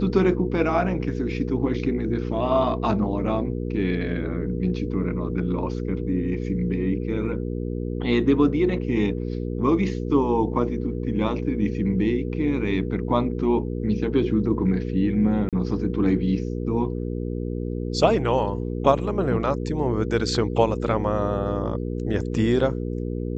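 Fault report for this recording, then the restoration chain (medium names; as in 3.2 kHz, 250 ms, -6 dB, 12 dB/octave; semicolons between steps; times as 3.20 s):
hum 60 Hz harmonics 8 -28 dBFS
15.49–15.53 s: dropout 37 ms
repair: de-hum 60 Hz, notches 8; interpolate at 15.49 s, 37 ms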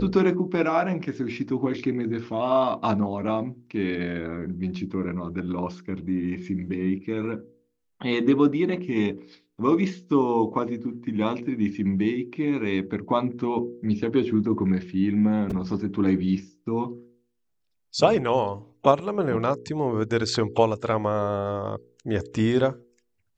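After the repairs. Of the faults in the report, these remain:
nothing left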